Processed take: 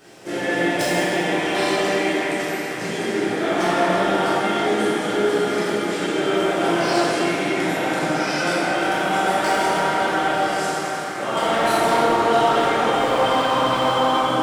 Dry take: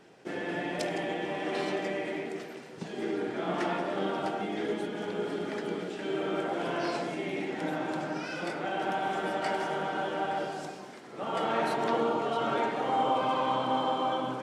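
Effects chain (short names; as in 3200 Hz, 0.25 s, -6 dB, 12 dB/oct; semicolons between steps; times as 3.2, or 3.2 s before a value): in parallel at -3 dB: limiter -28 dBFS, peak gain reduction 11 dB; on the sum: high shelf 3400 Hz +8.5 dB; on a send: narrowing echo 0.31 s, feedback 78%, band-pass 1600 Hz, level -6.5 dB; on the sum: hard clip -20.5 dBFS, distortion -20 dB; high shelf 8000 Hz +7.5 dB; plate-style reverb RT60 2.3 s, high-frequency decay 0.6×, DRR -9.5 dB; gain -2.5 dB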